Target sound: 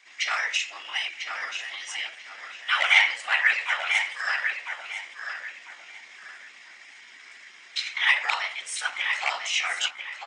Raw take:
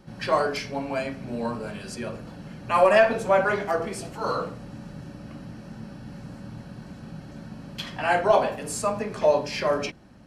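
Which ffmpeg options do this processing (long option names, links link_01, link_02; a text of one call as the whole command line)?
ffmpeg -i in.wav -filter_complex "[0:a]afftfilt=real='hypot(re,im)*cos(2*PI*random(0))':imag='hypot(re,im)*sin(2*PI*random(1))':win_size=512:overlap=0.75,asplit=2[link_01][link_02];[link_02]adelay=995,lowpass=frequency=4100:poles=1,volume=-6dB,asplit=2[link_03][link_04];[link_04]adelay=995,lowpass=frequency=4100:poles=1,volume=0.29,asplit=2[link_05][link_06];[link_06]adelay=995,lowpass=frequency=4100:poles=1,volume=0.29,asplit=2[link_07][link_08];[link_08]adelay=995,lowpass=frequency=4100:poles=1,volume=0.29[link_09];[link_01][link_03][link_05][link_07][link_09]amix=inputs=5:normalize=0,aresample=16000,asoftclip=type=hard:threshold=-17dB,aresample=44100,highpass=frequency=1800:width_type=q:width=2.7,asetrate=53981,aresample=44100,atempo=0.816958,volume=8dB" out.wav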